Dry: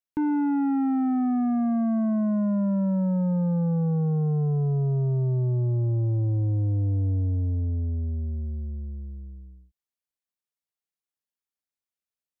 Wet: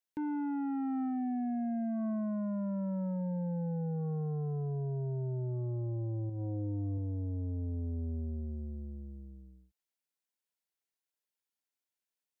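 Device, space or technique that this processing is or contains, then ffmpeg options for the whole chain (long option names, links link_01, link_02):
PA system with an anti-feedback notch: -filter_complex "[0:a]asettb=1/sr,asplit=3[link_01][link_02][link_03];[link_01]atrim=end=6.274[link_04];[link_02]atrim=start=6.27:end=6.98,asetpts=PTS-STARTPTS,afade=type=in:duration=0.004:curve=qsin,afade=type=out:start_time=0.706:duration=0.004:curve=qsin,asplit=2[link_05][link_06];[link_06]adelay=23,volume=-7dB[link_07];[link_05][link_07]amix=inputs=2:normalize=0,atrim=end_sample=31311[link_08];[link_03]atrim=start=6.976[link_09];[link_04][link_08]acrossfade=duration=0.004:curve1=hsin:curve2=qsin[link_10];[link_10][link_09]acrossfade=duration=0.004:curve1=qsin:curve2=hsin,highpass=frequency=190:poles=1,asuperstop=centerf=1200:order=20:qfactor=6.8,alimiter=level_in=5dB:limit=-24dB:level=0:latency=1:release=206,volume=-5dB"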